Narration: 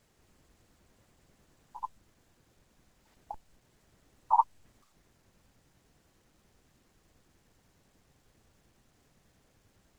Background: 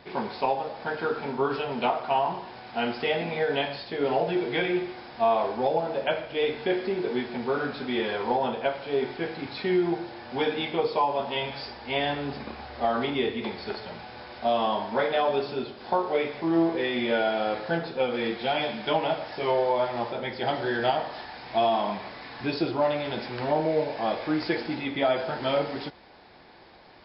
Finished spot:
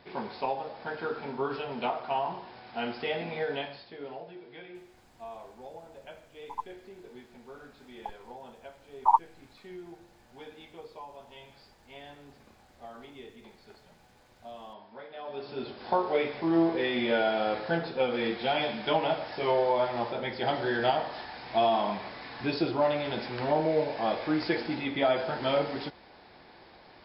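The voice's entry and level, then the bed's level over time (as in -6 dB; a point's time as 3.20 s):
4.75 s, +2.5 dB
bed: 3.47 s -5.5 dB
4.37 s -20.5 dB
15.11 s -20.5 dB
15.71 s -1.5 dB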